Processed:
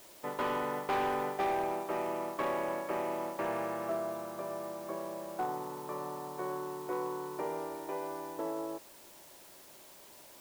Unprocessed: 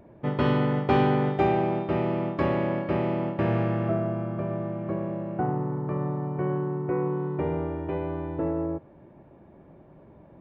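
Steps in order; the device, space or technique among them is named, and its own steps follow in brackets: drive-through speaker (band-pass 460–2800 Hz; peaking EQ 1 kHz +5.5 dB 0.34 oct; hard clipper -23 dBFS, distortion -15 dB; white noise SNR 19 dB); trim -4.5 dB

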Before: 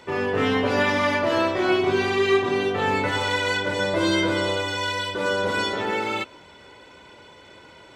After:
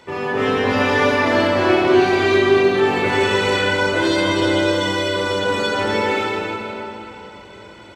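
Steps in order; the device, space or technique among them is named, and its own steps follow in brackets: cave (delay 314 ms -12.5 dB; reverberation RT60 3.3 s, pre-delay 39 ms, DRR -3 dB)

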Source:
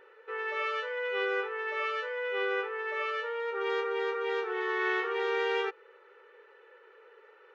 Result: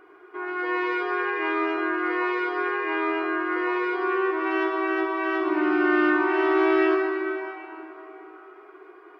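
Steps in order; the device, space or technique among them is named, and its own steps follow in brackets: slowed and reverbed (tape speed -18%; reverberation RT60 3.6 s, pre-delay 52 ms, DRR -1 dB); trim +4.5 dB

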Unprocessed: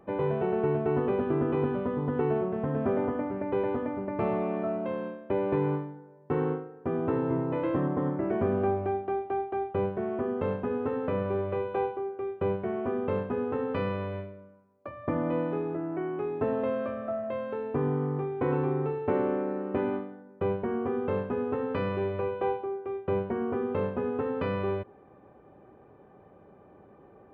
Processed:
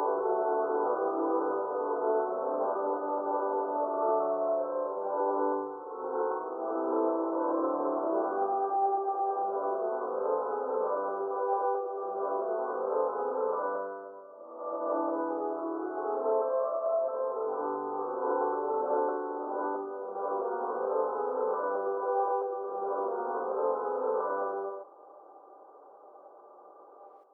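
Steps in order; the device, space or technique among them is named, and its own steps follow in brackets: steep low-pass 1.4 kHz 96 dB/octave; ghost voice (reverse; reverberation RT60 1.4 s, pre-delay 102 ms, DRR -8 dB; reverse; high-pass 500 Hz 24 dB/octave); trim -2.5 dB

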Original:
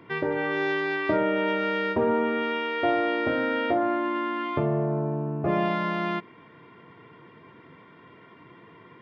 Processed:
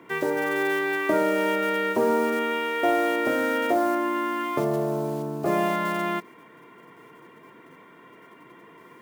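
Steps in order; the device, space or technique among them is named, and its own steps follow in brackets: early digital voice recorder (band-pass 210–3700 Hz; block-companded coder 5-bit); trim +2 dB

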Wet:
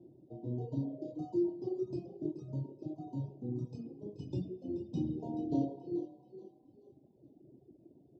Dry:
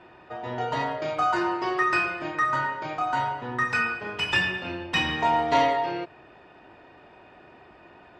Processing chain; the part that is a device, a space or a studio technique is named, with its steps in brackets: frequency-shifting delay pedal into a guitar cabinet (frequency-shifting echo 430 ms, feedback 38%, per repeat +30 Hz, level -10 dB; cabinet simulation 91–3500 Hz, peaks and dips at 130 Hz +9 dB, 290 Hz +6 dB, 450 Hz -9 dB, 1.6 kHz -10 dB); reverb removal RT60 1.8 s; elliptic band-stop 430–6500 Hz, stop band 80 dB; bass shelf 140 Hz -5.5 dB

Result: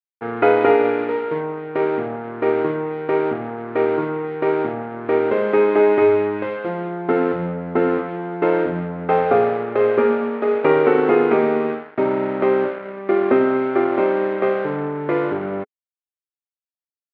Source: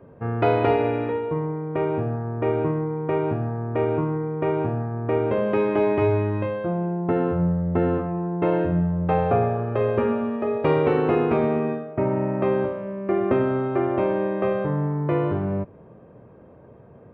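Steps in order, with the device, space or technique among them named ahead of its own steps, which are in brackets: blown loudspeaker (crossover distortion -35.5 dBFS; cabinet simulation 230–3500 Hz, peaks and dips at 260 Hz +6 dB, 420 Hz +7 dB, 820 Hz +4 dB, 1.4 kHz +8 dB, 2.1 kHz +7 dB); trim +2 dB

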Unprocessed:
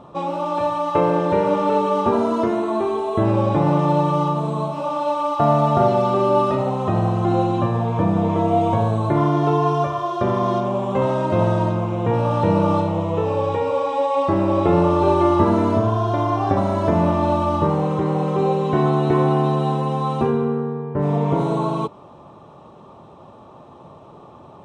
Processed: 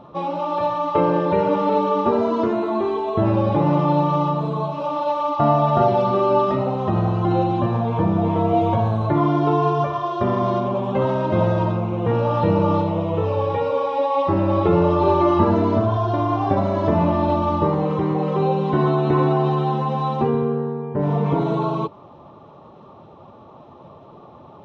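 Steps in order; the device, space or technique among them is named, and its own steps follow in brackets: clip after many re-uploads (low-pass 5.3 kHz 24 dB/octave; coarse spectral quantiser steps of 15 dB)

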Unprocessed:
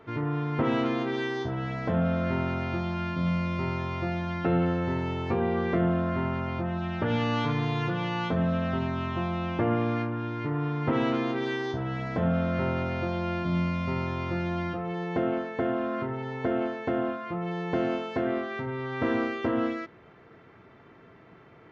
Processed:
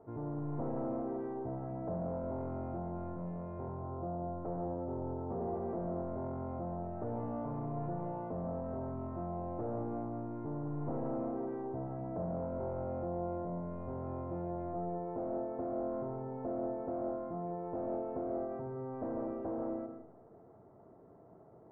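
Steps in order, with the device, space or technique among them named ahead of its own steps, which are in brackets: 3.68–5.41 s: steep low-pass 1.4 kHz 72 dB/octave; overdriven synthesiser ladder filter (saturation -29.5 dBFS, distortion -9 dB; four-pole ladder low-pass 890 Hz, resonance 40%); algorithmic reverb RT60 0.64 s, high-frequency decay 0.3×, pre-delay 100 ms, DRR 6 dB; trim +1 dB

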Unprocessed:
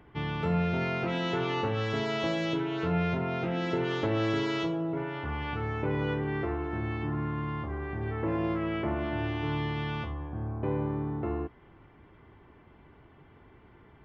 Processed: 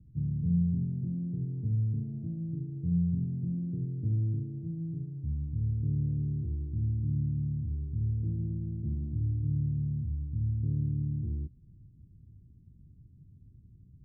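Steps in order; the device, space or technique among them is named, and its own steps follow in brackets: the neighbour's flat through the wall (low-pass 190 Hz 24 dB/octave; peaking EQ 110 Hz +3.5 dB 0.77 oct); trim +2.5 dB

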